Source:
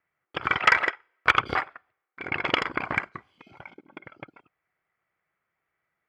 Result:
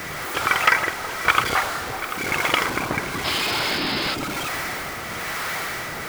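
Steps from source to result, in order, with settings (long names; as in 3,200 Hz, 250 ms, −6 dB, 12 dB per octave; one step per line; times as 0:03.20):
converter with a step at zero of −22.5 dBFS
two-band tremolo in antiphase 1 Hz, depth 50%, crossover 490 Hz
delay that swaps between a low-pass and a high-pass 370 ms, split 1,000 Hz, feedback 55%, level −8 dB
sound drawn into the spectrogram noise, 0:03.24–0:04.15, 250–5,300 Hz −28 dBFS
level +2 dB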